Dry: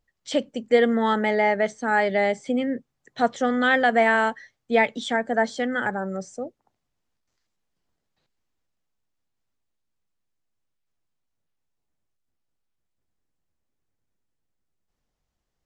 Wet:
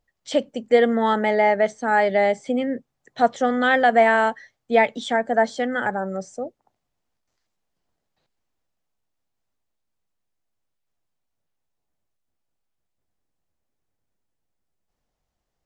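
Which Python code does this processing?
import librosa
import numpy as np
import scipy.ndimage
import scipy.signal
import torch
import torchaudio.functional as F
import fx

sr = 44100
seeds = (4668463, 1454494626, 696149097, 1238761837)

y = fx.peak_eq(x, sr, hz=690.0, db=4.5, octaves=0.98)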